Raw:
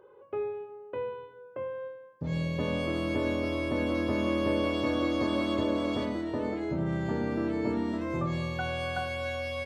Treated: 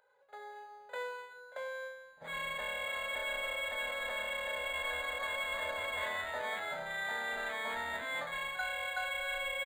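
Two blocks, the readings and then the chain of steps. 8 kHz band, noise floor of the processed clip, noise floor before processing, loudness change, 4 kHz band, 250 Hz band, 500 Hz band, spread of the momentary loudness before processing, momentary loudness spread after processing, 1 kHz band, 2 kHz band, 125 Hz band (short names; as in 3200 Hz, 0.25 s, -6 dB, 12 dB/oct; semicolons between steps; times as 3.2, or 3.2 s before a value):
n/a, -56 dBFS, -52 dBFS, -5.5 dB, +0.5 dB, -30.0 dB, -10.0 dB, 10 LU, 12 LU, -2.5 dB, +3.5 dB, -27.0 dB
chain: downsampling 32000 Hz; HPF 1200 Hz 12 dB/oct; high shelf 4600 Hz +11.5 dB; AGC gain up to 12 dB; dynamic EQ 2200 Hz, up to +5 dB, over -37 dBFS, Q 1.5; fixed phaser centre 1700 Hz, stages 8; reverse; compressor, threshold -32 dBFS, peak gain reduction 12 dB; reverse; pre-echo 43 ms -17 dB; decimation joined by straight lines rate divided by 8×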